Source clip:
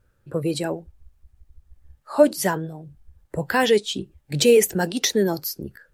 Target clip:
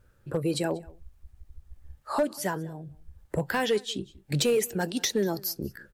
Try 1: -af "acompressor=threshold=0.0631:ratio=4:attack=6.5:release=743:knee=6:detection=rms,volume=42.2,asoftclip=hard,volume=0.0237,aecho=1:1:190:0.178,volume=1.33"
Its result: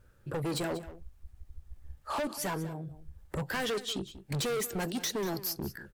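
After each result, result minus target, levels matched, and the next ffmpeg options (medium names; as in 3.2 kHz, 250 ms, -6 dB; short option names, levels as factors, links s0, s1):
overload inside the chain: distortion +15 dB; echo-to-direct +8.5 dB
-af "acompressor=threshold=0.0631:ratio=4:attack=6.5:release=743:knee=6:detection=rms,volume=11.2,asoftclip=hard,volume=0.0891,aecho=1:1:190:0.178,volume=1.33"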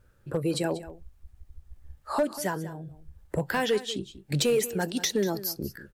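echo-to-direct +8.5 dB
-af "acompressor=threshold=0.0631:ratio=4:attack=6.5:release=743:knee=6:detection=rms,volume=11.2,asoftclip=hard,volume=0.0891,aecho=1:1:190:0.0668,volume=1.33"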